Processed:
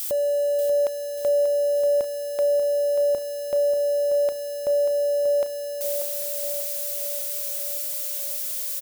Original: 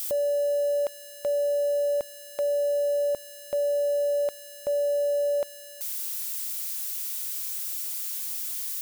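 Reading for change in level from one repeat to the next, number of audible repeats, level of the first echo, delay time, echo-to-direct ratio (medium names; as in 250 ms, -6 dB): -4.5 dB, 6, -9.0 dB, 587 ms, -7.0 dB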